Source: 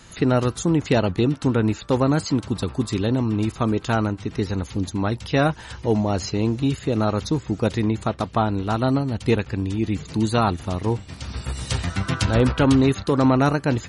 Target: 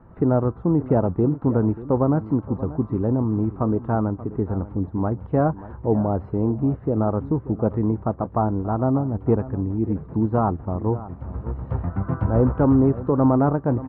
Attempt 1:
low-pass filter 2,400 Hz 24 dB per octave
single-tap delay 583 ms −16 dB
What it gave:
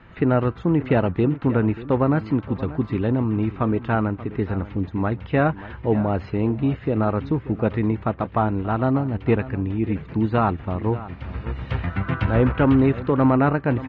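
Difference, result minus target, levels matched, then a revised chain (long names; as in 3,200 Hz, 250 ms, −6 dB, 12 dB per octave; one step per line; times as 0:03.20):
2,000 Hz band +12.5 dB
low-pass filter 1,100 Hz 24 dB per octave
single-tap delay 583 ms −16 dB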